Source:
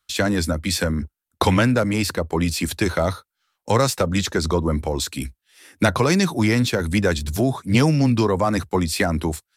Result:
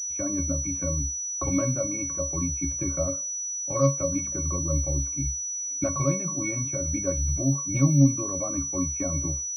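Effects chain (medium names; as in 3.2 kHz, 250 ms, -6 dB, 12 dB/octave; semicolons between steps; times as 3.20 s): pitch-class resonator C#, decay 0.2 s; de-hum 197.3 Hz, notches 8; class-D stage that switches slowly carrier 5.9 kHz; trim +4 dB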